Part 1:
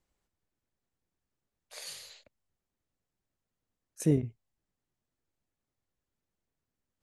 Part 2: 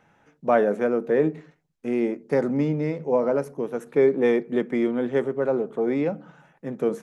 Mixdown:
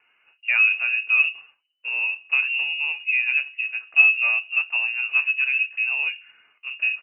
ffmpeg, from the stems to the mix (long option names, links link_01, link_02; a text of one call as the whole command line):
ffmpeg -i stem1.wav -i stem2.wav -filter_complex "[0:a]adelay=250,volume=-19dB[link_01];[1:a]equalizer=frequency=420:width_type=o:width=0.31:gain=8,flanger=delay=3.1:depth=8.7:regen=69:speed=0.69:shape=sinusoidal,volume=1dB[link_02];[link_01][link_02]amix=inputs=2:normalize=0,lowpass=frequency=2600:width_type=q:width=0.5098,lowpass=frequency=2600:width_type=q:width=0.6013,lowpass=frequency=2600:width_type=q:width=0.9,lowpass=frequency=2600:width_type=q:width=2.563,afreqshift=-3000" out.wav